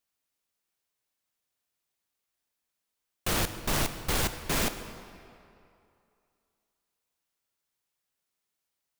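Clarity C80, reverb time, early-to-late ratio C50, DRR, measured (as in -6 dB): 11.0 dB, 2.6 s, 10.0 dB, 9.0 dB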